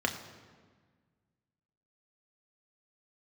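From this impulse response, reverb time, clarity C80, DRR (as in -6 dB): 1.5 s, 10.5 dB, 3.0 dB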